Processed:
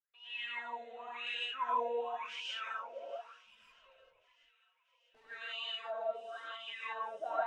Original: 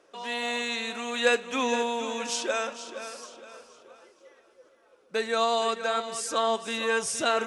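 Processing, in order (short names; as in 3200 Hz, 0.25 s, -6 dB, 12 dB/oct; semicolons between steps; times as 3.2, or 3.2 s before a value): expander -48 dBFS; wah 0.95 Hz 520–3000 Hz, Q 19; 3.45–5.25 tube stage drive 64 dB, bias 0.5; on a send: thin delay 0.639 s, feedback 70%, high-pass 2000 Hz, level -23 dB; on the sum: non-linear reverb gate 0.19 s rising, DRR -5.5 dB; gain -1.5 dB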